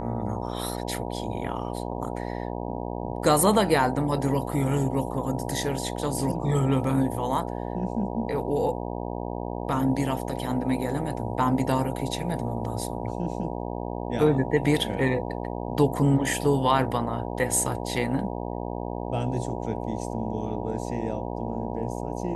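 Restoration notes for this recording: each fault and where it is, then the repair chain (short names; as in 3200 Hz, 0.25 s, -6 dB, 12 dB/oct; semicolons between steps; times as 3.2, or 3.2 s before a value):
buzz 60 Hz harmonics 16 -32 dBFS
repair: de-hum 60 Hz, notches 16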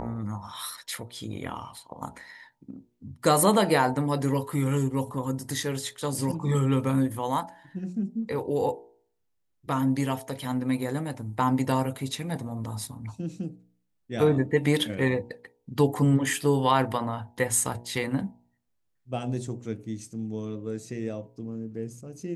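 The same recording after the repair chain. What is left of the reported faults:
none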